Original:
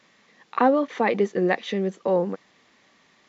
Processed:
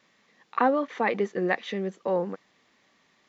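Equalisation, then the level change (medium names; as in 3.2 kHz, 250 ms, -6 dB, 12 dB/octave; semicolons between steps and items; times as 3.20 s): dynamic bell 1.5 kHz, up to +5 dB, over -36 dBFS, Q 0.78; -5.5 dB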